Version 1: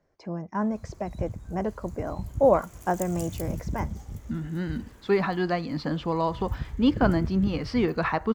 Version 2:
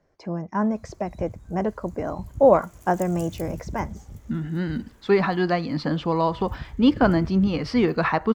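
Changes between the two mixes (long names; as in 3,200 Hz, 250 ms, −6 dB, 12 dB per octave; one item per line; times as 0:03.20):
speech +4.0 dB
background −3.0 dB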